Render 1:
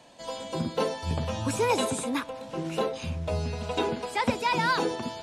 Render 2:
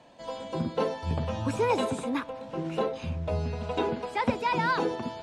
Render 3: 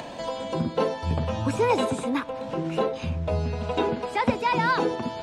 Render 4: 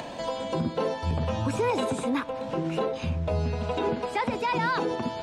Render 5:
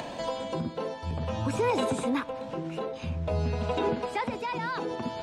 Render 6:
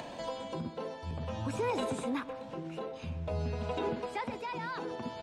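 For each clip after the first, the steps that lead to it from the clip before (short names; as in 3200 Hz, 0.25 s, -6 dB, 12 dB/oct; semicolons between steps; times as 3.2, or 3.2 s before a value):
LPF 2200 Hz 6 dB/oct
upward compressor, threshold -29 dBFS; gain +3.5 dB
limiter -18 dBFS, peak gain reduction 9 dB
tremolo 0.54 Hz, depth 51%
speakerphone echo 0.13 s, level -14 dB; gain -6 dB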